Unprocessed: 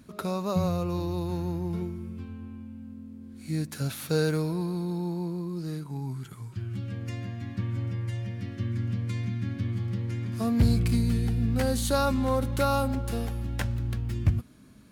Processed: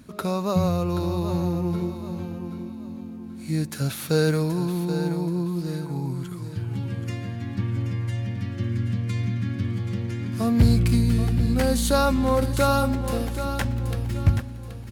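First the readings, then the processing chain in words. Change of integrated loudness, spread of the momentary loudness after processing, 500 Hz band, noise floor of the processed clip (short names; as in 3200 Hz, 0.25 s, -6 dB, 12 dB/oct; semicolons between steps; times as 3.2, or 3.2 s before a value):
+4.5 dB, 12 LU, +5.0 dB, -37 dBFS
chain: feedback echo 0.778 s, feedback 34%, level -10 dB; gain +4.5 dB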